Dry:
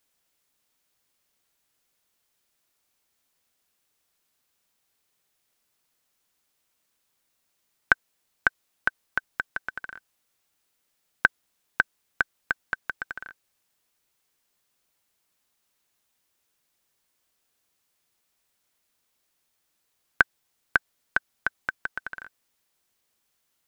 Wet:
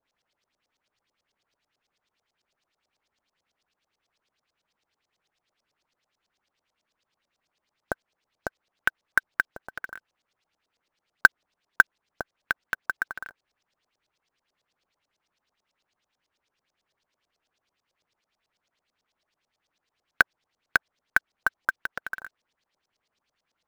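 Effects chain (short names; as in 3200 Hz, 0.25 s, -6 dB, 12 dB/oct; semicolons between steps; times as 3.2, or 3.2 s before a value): LFO low-pass saw up 9.1 Hz 540–5900 Hz; short-mantissa float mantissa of 2-bit; gain -1 dB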